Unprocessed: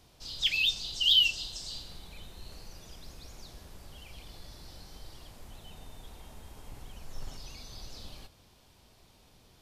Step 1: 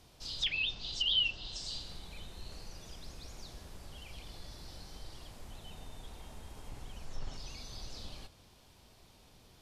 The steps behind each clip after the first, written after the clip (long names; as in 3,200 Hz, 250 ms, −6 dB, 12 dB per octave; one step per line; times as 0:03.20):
treble cut that deepens with the level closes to 2,200 Hz, closed at −26.5 dBFS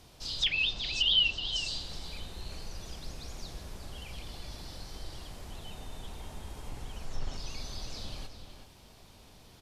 slap from a distant wall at 64 metres, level −7 dB
level +4.5 dB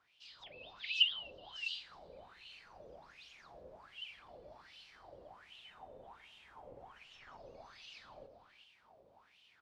LFO wah 1.3 Hz 510–3,000 Hz, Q 7.8
automatic gain control gain up to 5.5 dB
low-shelf EQ 240 Hz +10 dB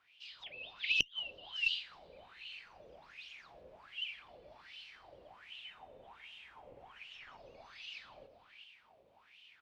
parametric band 2,600 Hz +10.5 dB 1.2 octaves
harmonic generator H 2 −9 dB, 6 −28 dB, 8 −29 dB, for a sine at −5.5 dBFS
gate with flip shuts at −9 dBFS, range −33 dB
level −2.5 dB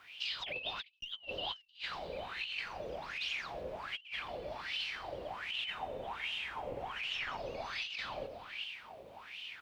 compressor whose output falls as the input rises −51 dBFS, ratio −0.5
level +9 dB